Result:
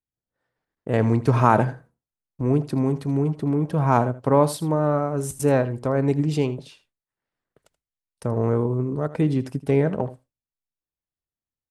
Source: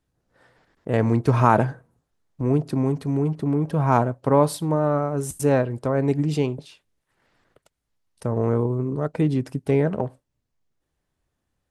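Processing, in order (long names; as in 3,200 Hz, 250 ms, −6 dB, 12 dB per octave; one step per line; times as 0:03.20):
noise gate with hold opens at −45 dBFS
on a send: single-tap delay 80 ms −16 dB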